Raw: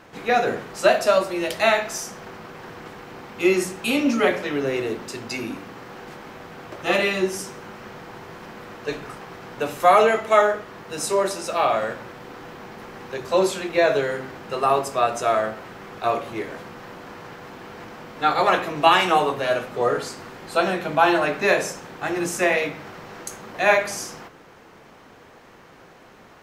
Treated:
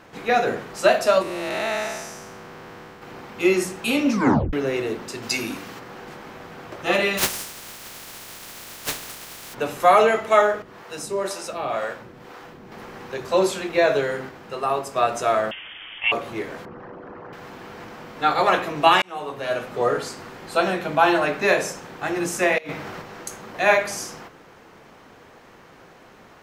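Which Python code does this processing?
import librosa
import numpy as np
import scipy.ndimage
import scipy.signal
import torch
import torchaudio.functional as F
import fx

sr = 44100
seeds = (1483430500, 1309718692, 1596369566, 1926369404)

y = fx.spec_blur(x, sr, span_ms=354.0, at=(1.22, 3.02))
y = fx.high_shelf(y, sr, hz=2700.0, db=10.5, at=(5.22, 5.78), fade=0.02)
y = fx.spec_flatten(y, sr, power=0.18, at=(7.17, 9.53), fade=0.02)
y = fx.harmonic_tremolo(y, sr, hz=2.0, depth_pct=70, crossover_hz=410.0, at=(10.62, 12.72))
y = fx.freq_invert(y, sr, carrier_hz=3400, at=(15.51, 16.12))
y = fx.envelope_sharpen(y, sr, power=2.0, at=(16.65, 17.33))
y = fx.over_compress(y, sr, threshold_db=-31.0, ratio=-0.5, at=(22.58, 23.02))
y = fx.edit(y, sr, fx.tape_stop(start_s=4.12, length_s=0.41),
    fx.clip_gain(start_s=14.29, length_s=0.67, db=-4.0),
    fx.fade_in_span(start_s=19.02, length_s=0.7), tone=tone)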